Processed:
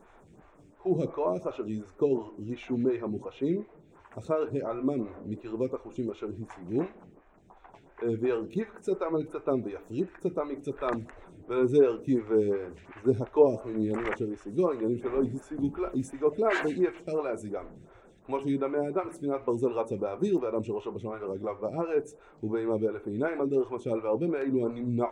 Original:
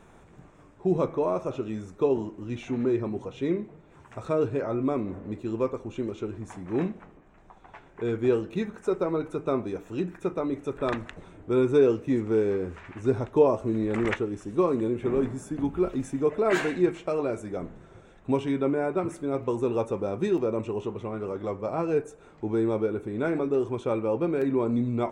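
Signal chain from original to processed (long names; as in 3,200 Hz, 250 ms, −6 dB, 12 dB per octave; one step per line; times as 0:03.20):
phaser with staggered stages 2.8 Hz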